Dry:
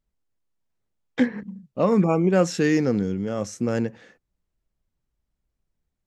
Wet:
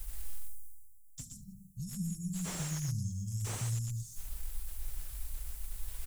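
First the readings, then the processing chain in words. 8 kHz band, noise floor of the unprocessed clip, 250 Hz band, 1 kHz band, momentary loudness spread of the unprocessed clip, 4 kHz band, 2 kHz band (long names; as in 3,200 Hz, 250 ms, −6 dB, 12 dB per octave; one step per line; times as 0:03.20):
0.0 dB, −81 dBFS, −19.5 dB, −21.5 dB, 12 LU, −8.5 dB, −19.5 dB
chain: high-shelf EQ 2,000 Hz +11 dB
reversed playback
upward compression, threshold −32 dBFS
reversed playback
dynamic equaliser 3,500 Hz, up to −5 dB, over −42 dBFS, Q 1.8
on a send: single-tap delay 119 ms −5 dB
on the sum: downward compressor 1.5 to 1, threshold −25 dBFS, peak gain reduction 5 dB
inverse Chebyshev band-stop filter 410–2,100 Hz, stop band 80 dB
comb filter 6.1 ms, depth 68%
single-tap delay 71 ms −15.5 dB
slew-rate limiting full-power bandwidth 13 Hz
level +12.5 dB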